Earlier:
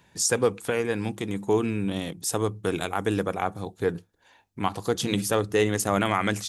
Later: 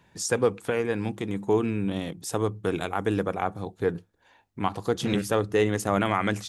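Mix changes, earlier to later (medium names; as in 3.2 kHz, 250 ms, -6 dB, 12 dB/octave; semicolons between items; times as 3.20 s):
first voice: add treble shelf 4 kHz -8.5 dB; second voice: remove band-pass filter 180 Hz, Q 1.3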